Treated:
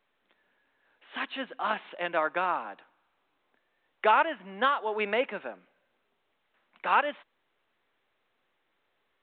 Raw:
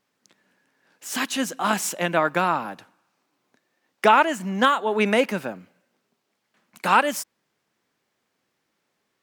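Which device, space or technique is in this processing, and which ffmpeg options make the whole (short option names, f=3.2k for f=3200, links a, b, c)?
telephone: -af "highpass=390,lowpass=3.6k,volume=-6dB" -ar 8000 -c:a pcm_mulaw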